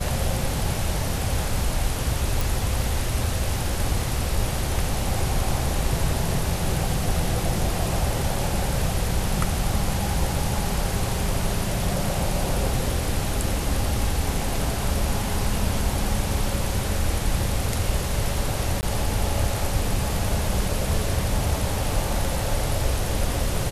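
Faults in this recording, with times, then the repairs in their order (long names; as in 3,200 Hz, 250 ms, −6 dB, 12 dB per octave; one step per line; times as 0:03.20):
0:02.41: click
0:18.81–0:18.83: drop-out 19 ms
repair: click removal
repair the gap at 0:18.81, 19 ms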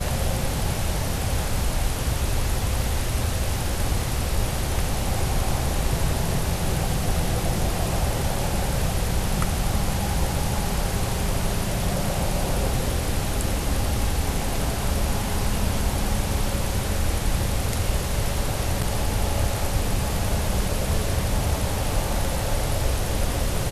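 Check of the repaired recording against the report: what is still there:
none of them is left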